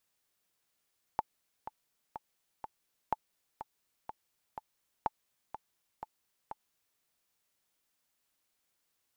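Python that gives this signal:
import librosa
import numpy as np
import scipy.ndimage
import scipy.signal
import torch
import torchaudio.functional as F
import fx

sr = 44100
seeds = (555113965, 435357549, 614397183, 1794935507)

y = fx.click_track(sr, bpm=124, beats=4, bars=3, hz=870.0, accent_db=11.5, level_db=-16.0)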